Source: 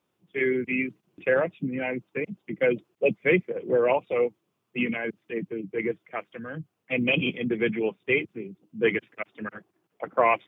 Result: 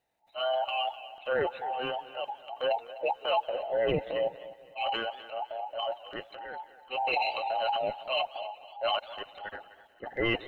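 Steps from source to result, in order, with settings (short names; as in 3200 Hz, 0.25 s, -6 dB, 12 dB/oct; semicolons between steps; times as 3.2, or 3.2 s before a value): band inversion scrambler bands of 1000 Hz; transient shaper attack -6 dB, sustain +9 dB; in parallel at -2.5 dB: limiter -18.5 dBFS, peak gain reduction 10 dB; on the sum: thinning echo 0.253 s, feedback 33%, high-pass 420 Hz, level -15 dB; warbling echo 0.183 s, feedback 56%, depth 203 cents, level -21 dB; gain -8.5 dB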